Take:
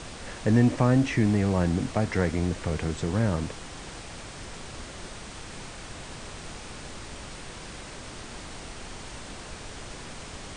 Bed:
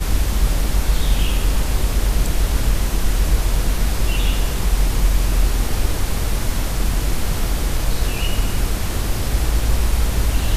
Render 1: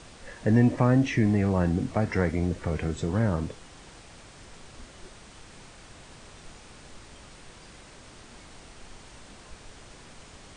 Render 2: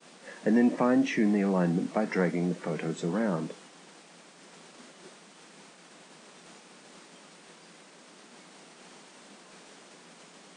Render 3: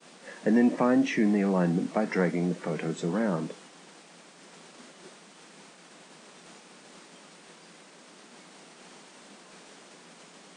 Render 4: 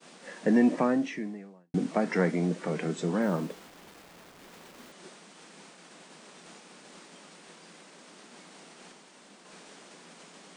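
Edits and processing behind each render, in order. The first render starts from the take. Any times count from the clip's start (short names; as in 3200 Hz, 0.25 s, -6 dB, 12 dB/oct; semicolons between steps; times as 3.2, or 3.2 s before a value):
noise print and reduce 8 dB
expander -45 dBFS; elliptic high-pass 170 Hz, stop band 40 dB
gain +1 dB
0.76–1.74 fade out quadratic; 3.22–4.92 level-crossing sampler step -48 dBFS; 8.92–9.45 gain -3.5 dB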